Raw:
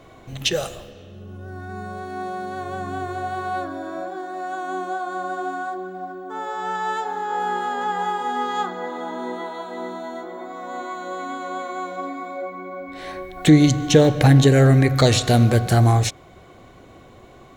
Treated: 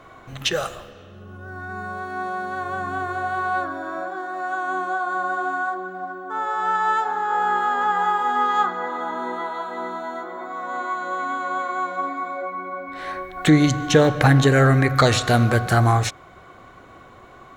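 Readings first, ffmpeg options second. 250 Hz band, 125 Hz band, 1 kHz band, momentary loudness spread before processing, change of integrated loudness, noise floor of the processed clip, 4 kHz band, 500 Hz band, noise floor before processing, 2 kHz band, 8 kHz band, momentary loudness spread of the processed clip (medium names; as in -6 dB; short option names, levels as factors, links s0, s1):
-2.5 dB, -3.0 dB, +3.5 dB, 19 LU, -0.5 dB, -46 dBFS, -1.5 dB, -1.0 dB, -47 dBFS, +5.5 dB, -2.5 dB, 15 LU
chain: -af "equalizer=f=1300:t=o:w=1.2:g=11.5,volume=0.708"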